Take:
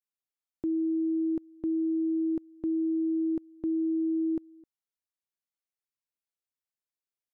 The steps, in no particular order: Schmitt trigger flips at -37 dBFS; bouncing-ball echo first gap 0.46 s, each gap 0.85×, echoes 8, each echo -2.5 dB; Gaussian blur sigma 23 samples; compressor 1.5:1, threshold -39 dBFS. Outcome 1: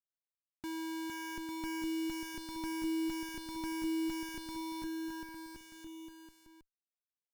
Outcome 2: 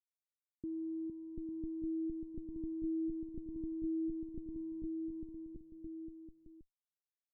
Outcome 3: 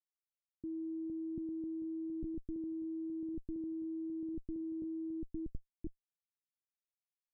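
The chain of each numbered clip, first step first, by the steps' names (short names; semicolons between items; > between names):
Gaussian blur > compressor > Schmitt trigger > bouncing-ball echo; Schmitt trigger > bouncing-ball echo > compressor > Gaussian blur; compressor > bouncing-ball echo > Schmitt trigger > Gaussian blur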